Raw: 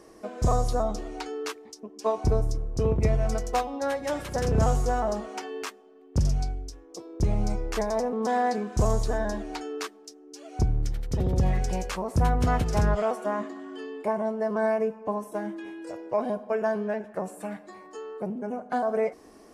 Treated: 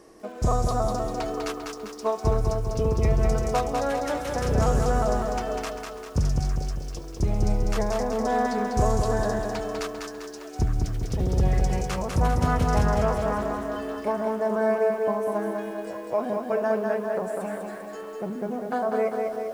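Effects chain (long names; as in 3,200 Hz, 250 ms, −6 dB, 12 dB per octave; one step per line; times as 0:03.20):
echo through a band-pass that steps 431 ms, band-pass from 530 Hz, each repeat 1.4 octaves, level −6.5 dB
dynamic equaliser 1,300 Hz, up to +4 dB, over −50 dBFS, Q 7.9
feedback echo at a low word length 198 ms, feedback 55%, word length 9 bits, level −4 dB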